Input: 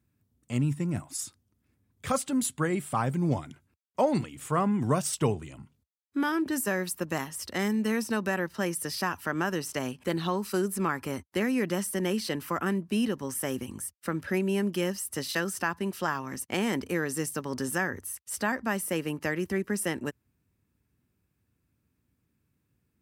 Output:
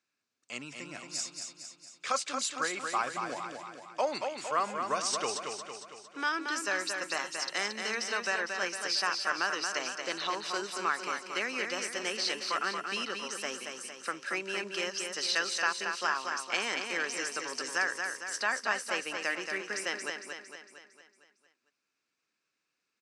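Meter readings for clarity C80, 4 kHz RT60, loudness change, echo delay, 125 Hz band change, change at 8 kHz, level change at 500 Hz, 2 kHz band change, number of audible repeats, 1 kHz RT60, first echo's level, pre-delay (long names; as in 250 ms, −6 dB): no reverb audible, no reverb audible, −2.5 dB, 228 ms, −24.5 dB, −1.0 dB, −6.0 dB, +2.5 dB, 6, no reverb audible, −5.5 dB, no reverb audible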